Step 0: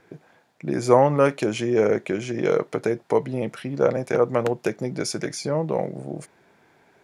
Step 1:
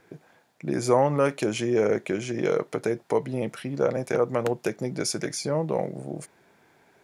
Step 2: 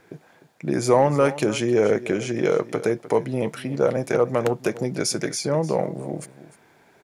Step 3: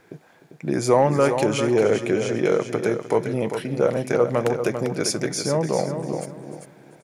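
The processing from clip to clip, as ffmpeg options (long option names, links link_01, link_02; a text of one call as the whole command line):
ffmpeg -i in.wav -filter_complex "[0:a]highshelf=frequency=7500:gain=7,asplit=2[link_01][link_02];[link_02]alimiter=limit=-11.5dB:level=0:latency=1:release=140,volume=0dB[link_03];[link_01][link_03]amix=inputs=2:normalize=0,volume=-8dB" out.wav
ffmpeg -i in.wav -filter_complex "[0:a]aecho=1:1:302:0.168,asplit=2[link_01][link_02];[link_02]volume=14dB,asoftclip=hard,volume=-14dB,volume=-5.5dB[link_03];[link_01][link_03]amix=inputs=2:normalize=0" out.wav
ffmpeg -i in.wav -af "aecho=1:1:396|792|1188:0.398|0.0916|0.0211" out.wav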